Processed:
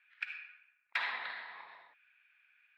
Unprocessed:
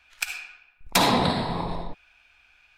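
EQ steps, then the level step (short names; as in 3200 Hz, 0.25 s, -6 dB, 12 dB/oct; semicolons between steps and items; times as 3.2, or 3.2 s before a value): band-pass 1800 Hz, Q 3.3; air absorption 410 m; differentiator; +12.0 dB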